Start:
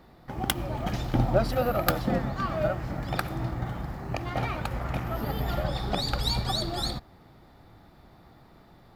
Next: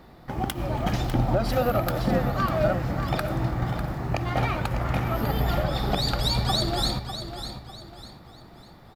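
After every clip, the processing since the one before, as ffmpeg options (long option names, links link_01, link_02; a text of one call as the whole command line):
ffmpeg -i in.wav -af "alimiter=limit=-17.5dB:level=0:latency=1:release=141,aecho=1:1:599|1198|1797|2396:0.316|0.108|0.0366|0.0124,volume=4.5dB" out.wav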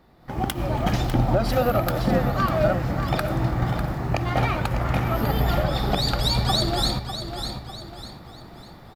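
ffmpeg -i in.wav -af "dynaudnorm=framelen=190:gausssize=3:maxgain=12.5dB,volume=-7.5dB" out.wav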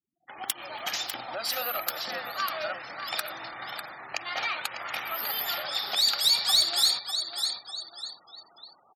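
ffmpeg -i in.wav -filter_complex "[0:a]afftfilt=real='re*gte(hypot(re,im),0.00794)':imag='im*gte(hypot(re,im),0.00794)':win_size=1024:overlap=0.75,aderivative,asplit=2[link_01][link_02];[link_02]highpass=frequency=720:poles=1,volume=16dB,asoftclip=type=tanh:threshold=-9dB[link_03];[link_01][link_03]amix=inputs=2:normalize=0,lowpass=frequency=6800:poles=1,volume=-6dB" out.wav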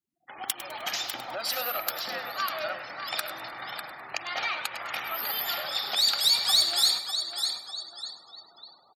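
ffmpeg -i in.wav -af "aecho=1:1:102|204|306|408:0.211|0.0782|0.0289|0.0107" out.wav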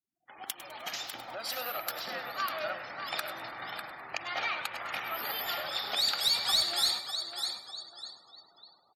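ffmpeg -i in.wav -filter_complex "[0:a]acrossover=split=3600[link_01][link_02];[link_01]dynaudnorm=framelen=520:gausssize=7:maxgain=5dB[link_03];[link_03][link_02]amix=inputs=2:normalize=0,volume=-7dB" -ar 44100 -c:a aac -b:a 64k out.aac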